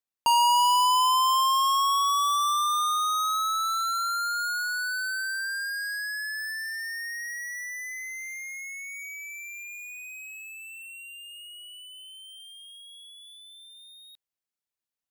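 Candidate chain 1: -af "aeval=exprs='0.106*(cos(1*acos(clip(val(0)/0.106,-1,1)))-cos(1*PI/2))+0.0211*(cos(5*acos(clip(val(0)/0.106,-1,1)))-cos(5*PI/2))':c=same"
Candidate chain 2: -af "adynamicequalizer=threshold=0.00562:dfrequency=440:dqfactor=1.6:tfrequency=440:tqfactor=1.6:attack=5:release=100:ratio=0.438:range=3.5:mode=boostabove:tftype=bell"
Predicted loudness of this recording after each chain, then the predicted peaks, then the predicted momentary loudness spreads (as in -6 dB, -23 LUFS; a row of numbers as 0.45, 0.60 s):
-25.0, -25.0 LUFS; -18.5, -17.0 dBFS; 15, 22 LU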